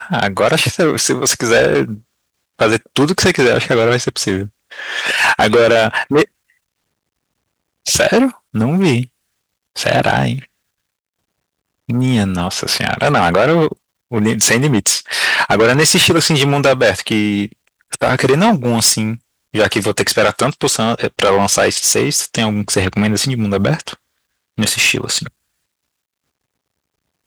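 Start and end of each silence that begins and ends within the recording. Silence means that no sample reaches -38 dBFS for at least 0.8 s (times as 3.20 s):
6.25–7.86 s
10.45–11.89 s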